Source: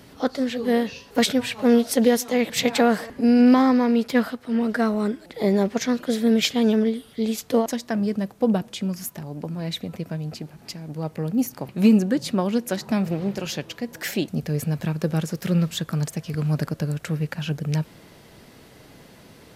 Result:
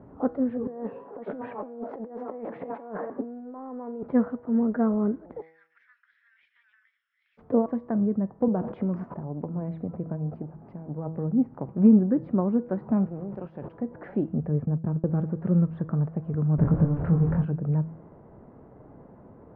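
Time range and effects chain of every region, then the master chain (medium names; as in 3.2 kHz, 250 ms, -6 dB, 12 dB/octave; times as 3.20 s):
0.67–4.03 s: high-pass 360 Hz + treble shelf 3 kHz -11 dB + compressor with a negative ratio -34 dBFS
5.40–7.37 s: steep high-pass 1.7 kHz 48 dB/octave + compression 3:1, threshold -34 dBFS + whistle 5.3 kHz -45 dBFS
8.48–9.14 s: tone controls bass -9 dB, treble 0 dB + level flattener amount 70%
13.06–13.74 s: companding laws mixed up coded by A + pre-emphasis filter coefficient 0.8 + level flattener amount 100%
14.65–15.07 s: gate -30 dBFS, range -31 dB + treble shelf 2.2 kHz -10.5 dB
16.58–17.45 s: jump at every zero crossing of -27 dBFS + bass shelf 130 Hz +10 dB + doubling 24 ms -4.5 dB
whole clip: low-pass 1.1 kHz 24 dB/octave; dynamic bell 730 Hz, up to -5 dB, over -35 dBFS, Q 0.9; de-hum 161.6 Hz, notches 40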